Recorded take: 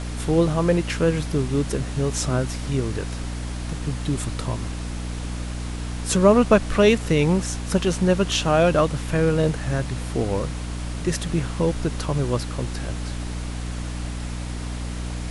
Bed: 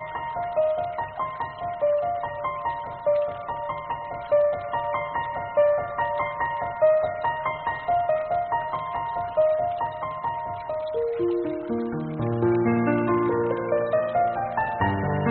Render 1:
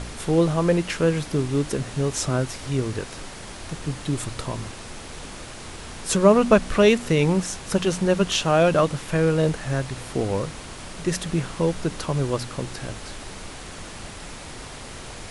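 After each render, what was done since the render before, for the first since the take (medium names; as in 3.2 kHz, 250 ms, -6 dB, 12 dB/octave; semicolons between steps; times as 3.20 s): de-hum 60 Hz, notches 5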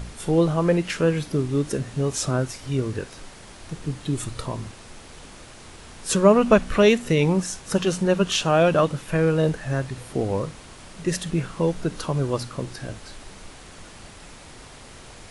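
noise print and reduce 6 dB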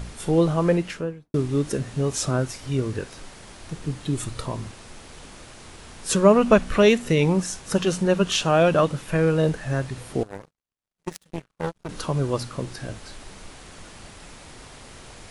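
0.67–1.34 s: studio fade out; 10.23–11.89 s: power-law waveshaper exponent 3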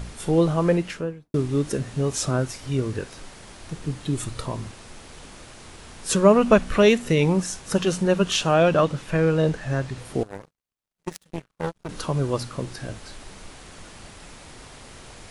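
8.54–10.05 s: low-pass 8.1 kHz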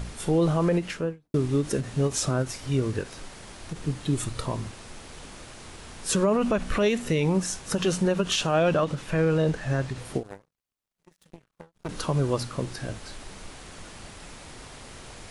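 peak limiter -14.5 dBFS, peak gain reduction 11.5 dB; endings held to a fixed fall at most 270 dB/s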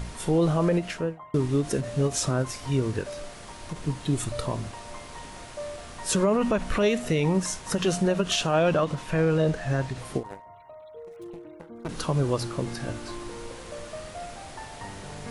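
add bed -17 dB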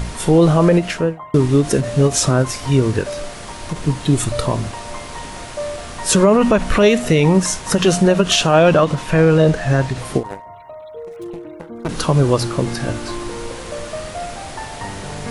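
trim +10.5 dB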